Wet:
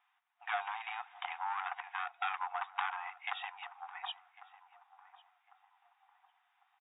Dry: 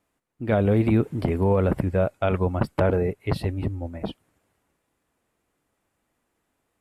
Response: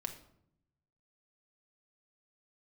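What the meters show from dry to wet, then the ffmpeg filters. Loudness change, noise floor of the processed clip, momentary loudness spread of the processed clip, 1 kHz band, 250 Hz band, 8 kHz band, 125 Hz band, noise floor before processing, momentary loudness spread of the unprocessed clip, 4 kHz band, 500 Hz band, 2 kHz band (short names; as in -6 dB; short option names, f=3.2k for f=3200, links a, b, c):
-16.0 dB, -77 dBFS, 11 LU, -4.0 dB, under -40 dB, n/a, under -40 dB, -76 dBFS, 12 LU, -1.0 dB, -29.5 dB, -3.0 dB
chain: -filter_complex "[0:a]acompressor=threshold=-23dB:ratio=2.5,aresample=11025,asoftclip=type=tanh:threshold=-23dB,aresample=44100,afftfilt=real='re*between(b*sr/4096,700,3800)':imag='im*between(b*sr/4096,700,3800)':win_size=4096:overlap=0.75,asplit=2[a][b];[b]adelay=1100,lowpass=f=1k:p=1,volume=-14dB,asplit=2[c][d];[d]adelay=1100,lowpass=f=1k:p=1,volume=0.5,asplit=2[e][f];[f]adelay=1100,lowpass=f=1k:p=1,volume=0.5,asplit=2[g][h];[h]adelay=1100,lowpass=f=1k:p=1,volume=0.5,asplit=2[i][j];[j]adelay=1100,lowpass=f=1k:p=1,volume=0.5[k];[a][c][e][g][i][k]amix=inputs=6:normalize=0,volume=3.5dB"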